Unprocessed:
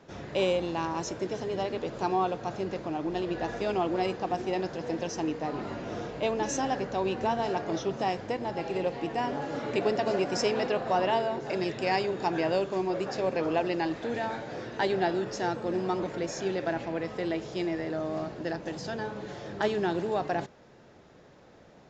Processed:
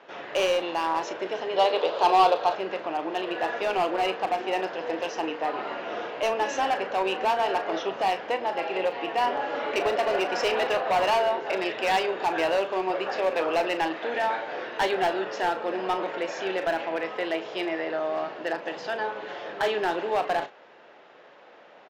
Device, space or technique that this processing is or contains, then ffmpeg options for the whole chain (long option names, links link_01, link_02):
megaphone: -filter_complex "[0:a]highpass=580,lowpass=2900,equalizer=frequency=2900:width_type=o:width=0.39:gain=5,asoftclip=type=hard:threshold=-27.5dB,asplit=2[link_01][link_02];[link_02]adelay=37,volume=-11dB[link_03];[link_01][link_03]amix=inputs=2:normalize=0,asettb=1/sr,asplit=3[link_04][link_05][link_06];[link_04]atrim=end=1.564[link_07];[link_05]atrim=start=1.56:end=2.55,asetpts=PTS-STARTPTS,afade=type=in:duration=0.004:curve=qsin,afade=type=out:start_time=0.986:duration=0.004:curve=qsin,equalizer=frequency=250:width_type=o:width=1:gain=-5,equalizer=frequency=500:width_type=o:width=1:gain=7,equalizer=frequency=1000:width_type=o:width=1:gain=5,equalizer=frequency=2000:width_type=o:width=1:gain=-4,equalizer=frequency=4000:width_type=o:width=1:gain=11[link_08];[link_06]atrim=start=2.546[link_09];[link_07][link_08]acrossfade=duration=0.004:curve1=hsin:curve2=qsin[link_10];[link_10][link_09]acrossfade=duration=0.004:curve1=qsin:curve2=hsin,volume=8dB"